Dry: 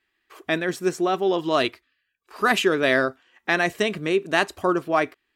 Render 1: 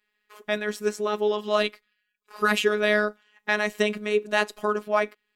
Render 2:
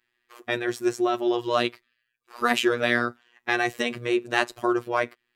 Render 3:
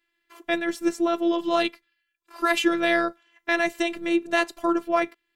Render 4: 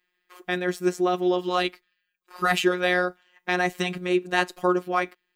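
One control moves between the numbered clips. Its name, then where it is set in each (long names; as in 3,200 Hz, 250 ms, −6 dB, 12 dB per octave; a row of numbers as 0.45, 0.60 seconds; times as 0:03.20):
phases set to zero, frequency: 210, 120, 340, 180 Hertz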